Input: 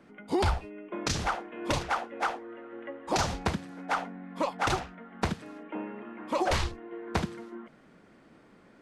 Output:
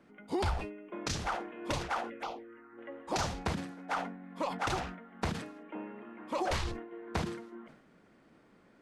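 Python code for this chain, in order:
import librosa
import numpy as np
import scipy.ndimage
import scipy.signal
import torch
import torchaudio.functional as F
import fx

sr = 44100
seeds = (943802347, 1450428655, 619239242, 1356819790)

y = fx.env_phaser(x, sr, low_hz=390.0, high_hz=1700.0, full_db=-27.5, at=(2.09, 2.77), fade=0.02)
y = fx.sustainer(y, sr, db_per_s=72.0)
y = y * 10.0 ** (-5.5 / 20.0)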